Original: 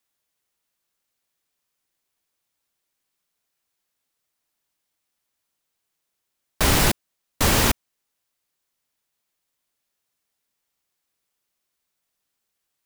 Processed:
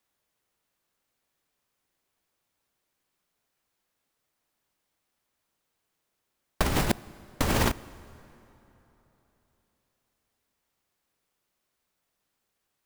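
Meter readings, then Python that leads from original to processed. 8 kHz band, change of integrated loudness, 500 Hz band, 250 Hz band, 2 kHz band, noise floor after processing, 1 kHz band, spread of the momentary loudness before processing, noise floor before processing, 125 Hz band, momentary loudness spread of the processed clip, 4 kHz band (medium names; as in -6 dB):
-11.5 dB, -8.0 dB, -4.5 dB, -4.0 dB, -7.5 dB, -81 dBFS, -5.5 dB, 10 LU, -79 dBFS, -5.5 dB, 7 LU, -10.0 dB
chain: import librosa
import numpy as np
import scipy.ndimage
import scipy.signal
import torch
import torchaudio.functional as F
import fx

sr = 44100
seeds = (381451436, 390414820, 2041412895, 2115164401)

y = fx.high_shelf(x, sr, hz=2200.0, db=-8.0)
y = fx.over_compress(y, sr, threshold_db=-23.0, ratio=-0.5)
y = fx.rev_plate(y, sr, seeds[0], rt60_s=3.6, hf_ratio=0.65, predelay_ms=0, drr_db=19.0)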